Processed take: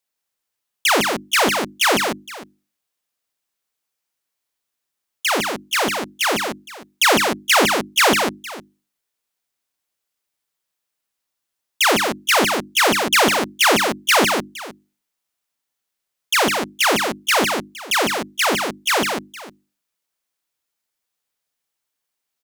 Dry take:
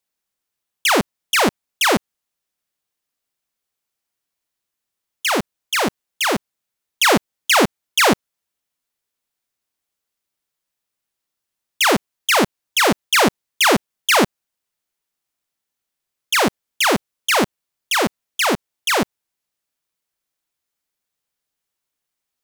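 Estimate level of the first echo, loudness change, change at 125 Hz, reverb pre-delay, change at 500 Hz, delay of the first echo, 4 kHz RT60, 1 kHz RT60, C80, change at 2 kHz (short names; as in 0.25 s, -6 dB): -5.0 dB, +0.5 dB, -2.5 dB, none, 0.0 dB, 0.156 s, none, none, none, +1.0 dB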